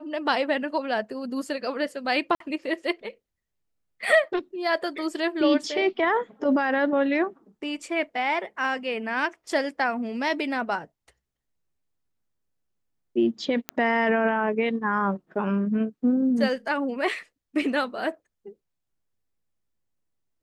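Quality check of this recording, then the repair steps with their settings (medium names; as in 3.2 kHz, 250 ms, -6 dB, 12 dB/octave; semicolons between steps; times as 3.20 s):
2.35–2.40 s: dropout 53 ms
13.69 s: pop -11 dBFS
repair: de-click; interpolate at 2.35 s, 53 ms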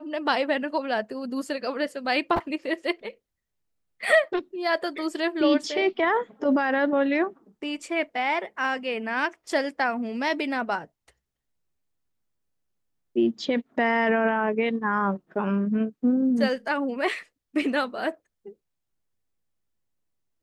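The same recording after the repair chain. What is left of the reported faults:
nothing left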